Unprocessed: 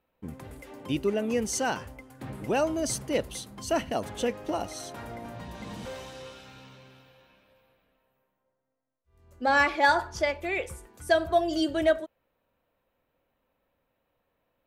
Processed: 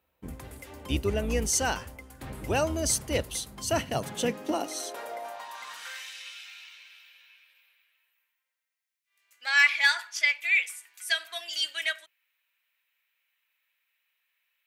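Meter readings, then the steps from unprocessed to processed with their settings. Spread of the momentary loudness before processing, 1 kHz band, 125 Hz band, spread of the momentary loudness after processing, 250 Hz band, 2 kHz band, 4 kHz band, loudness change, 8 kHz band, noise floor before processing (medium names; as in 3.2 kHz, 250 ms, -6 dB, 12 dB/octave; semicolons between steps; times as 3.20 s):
20 LU, -6.5 dB, +3.5 dB, 20 LU, -4.5 dB, +4.0 dB, +6.0 dB, +0.5 dB, +5.5 dB, -78 dBFS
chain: octave divider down 2 oct, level +2 dB; high-pass sweep 60 Hz -> 2.2 kHz, 3.47–6.13 s; tilt EQ +2 dB/octave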